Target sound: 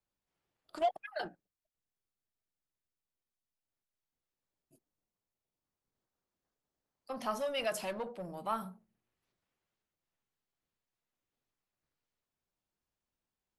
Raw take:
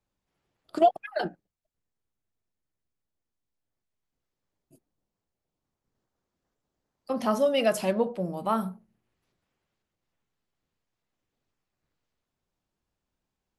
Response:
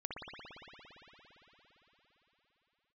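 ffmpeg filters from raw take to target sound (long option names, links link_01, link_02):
-filter_complex "[0:a]lowshelf=frequency=430:gain=-4.5,acrossover=split=650|5000[link_01][link_02][link_03];[link_01]asoftclip=type=tanh:threshold=-35dB[link_04];[link_04][link_02][link_03]amix=inputs=3:normalize=0,volume=-6dB"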